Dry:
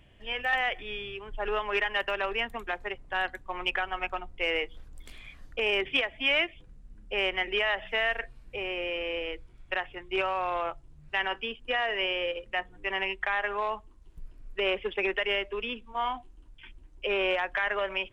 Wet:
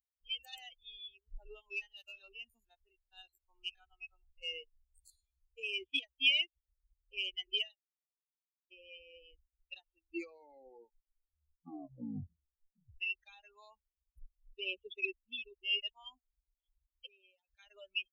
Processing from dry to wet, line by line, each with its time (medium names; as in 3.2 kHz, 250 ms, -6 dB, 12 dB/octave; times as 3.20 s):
1.45–6.03 s: spectrogram pixelated in time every 50 ms
7.63–8.71 s: fade out exponential
9.84 s: tape stop 3.17 s
15.16–15.90 s: reverse
17.06–17.59 s: compression 20:1, threshold -33 dBFS
whole clip: expander on every frequency bin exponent 3; FFT filter 310 Hz 0 dB, 500 Hz -13 dB, 1.8 kHz -28 dB, 2.6 kHz +10 dB; trim -5 dB